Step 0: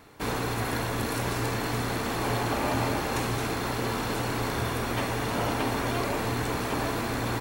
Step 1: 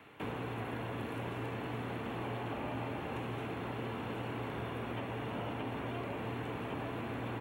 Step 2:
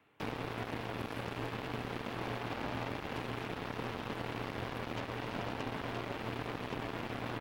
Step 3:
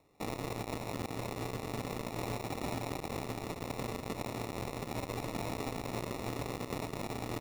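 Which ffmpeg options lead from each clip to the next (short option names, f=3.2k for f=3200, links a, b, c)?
-filter_complex "[0:a]highpass=97,highshelf=f=3.8k:t=q:w=3:g=-9,acrossover=split=180|1000[a][b][c];[a]acompressor=threshold=-39dB:ratio=4[d];[b]acompressor=threshold=-36dB:ratio=4[e];[c]acompressor=threshold=-46dB:ratio=4[f];[d][e][f]amix=inputs=3:normalize=0,volume=-4dB"
-af "aeval=exprs='0.0473*(cos(1*acos(clip(val(0)/0.0473,-1,1)))-cos(1*PI/2))+0.0015*(cos(5*acos(clip(val(0)/0.0473,-1,1)))-cos(5*PI/2))+0.00944*(cos(7*acos(clip(val(0)/0.0473,-1,1)))-cos(7*PI/2))':c=same,volume=1dB"
-af "acrusher=samples=28:mix=1:aa=0.000001,volume=1dB"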